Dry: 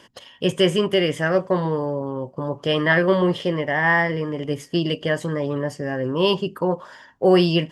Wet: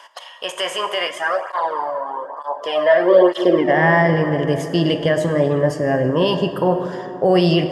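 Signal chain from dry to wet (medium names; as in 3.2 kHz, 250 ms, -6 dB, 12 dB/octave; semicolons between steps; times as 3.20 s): peaking EQ 670 Hz +8 dB 0.49 oct; peak limiter -11.5 dBFS, peak gain reduction 8.5 dB; high-pass sweep 970 Hz -> 68 Hz, 2.46–4.56 s; plate-style reverb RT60 3.6 s, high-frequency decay 0.4×, DRR 7 dB; 1.07–3.69 s: cancelling through-zero flanger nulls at 1.1 Hz, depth 2.7 ms; trim +4 dB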